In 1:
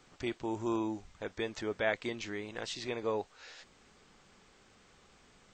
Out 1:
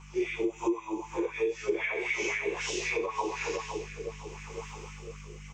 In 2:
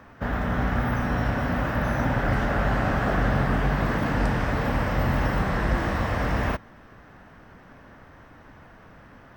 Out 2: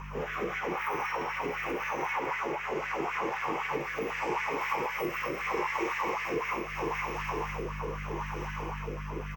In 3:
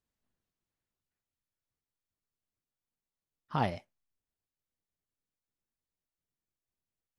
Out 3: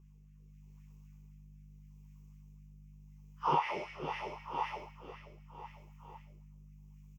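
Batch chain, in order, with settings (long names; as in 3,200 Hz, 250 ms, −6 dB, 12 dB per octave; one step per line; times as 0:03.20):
random phases in long frames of 200 ms
repeating echo 501 ms, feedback 48%, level −12.5 dB
coupled-rooms reverb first 0.62 s, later 2.5 s, from −20 dB, DRR 3.5 dB
rotating-speaker cabinet horn 0.8 Hz
auto-filter high-pass sine 3.9 Hz 330–1,800 Hz
mains hum 50 Hz, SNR 20 dB
automatic gain control gain up to 4 dB
dynamic equaliser 2,200 Hz, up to +6 dB, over −47 dBFS, Q 6.4
downward compressor 10 to 1, threshold −37 dBFS
EQ curve with evenly spaced ripples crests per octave 0.75, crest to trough 14 dB
level +6.5 dB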